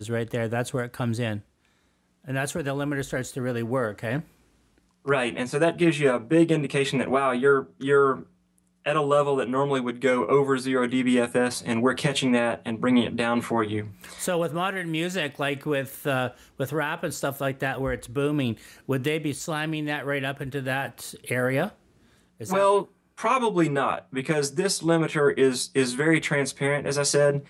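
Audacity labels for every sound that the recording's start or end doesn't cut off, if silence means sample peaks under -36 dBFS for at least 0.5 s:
2.280000	4.210000	sound
5.060000	8.230000	sound
8.860000	21.690000	sound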